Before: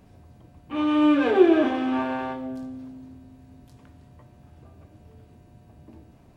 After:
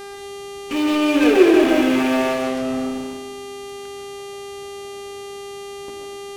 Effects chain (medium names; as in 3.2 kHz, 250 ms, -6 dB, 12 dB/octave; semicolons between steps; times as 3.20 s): fifteen-band graphic EQ 100 Hz -9 dB, 400 Hz +5 dB, 1 kHz -6 dB, 2.5 kHz +9 dB; in parallel at -10 dB: fuzz box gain 38 dB, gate -40 dBFS; on the sum: mains buzz 400 Hz, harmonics 30, -33 dBFS -6 dB/octave; reverberation RT60 0.70 s, pre-delay 91 ms, DRR 1 dB; trim -2 dB